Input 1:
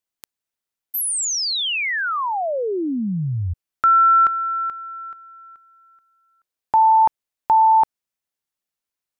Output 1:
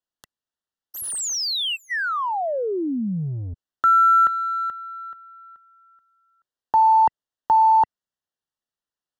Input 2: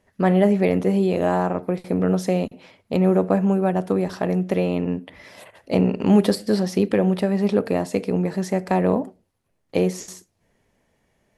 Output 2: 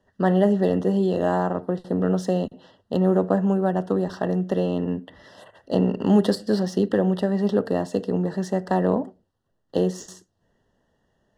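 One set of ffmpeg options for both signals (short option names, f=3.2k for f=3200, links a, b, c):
-filter_complex "[0:a]acrossover=split=140|1300[a][b][c];[a]asoftclip=type=tanh:threshold=-30.5dB[d];[d][b][c]amix=inputs=3:normalize=0,adynamicsmooth=sensitivity=7:basefreq=6.4k,asuperstop=centerf=2300:order=20:qfactor=3.2,volume=-1.5dB"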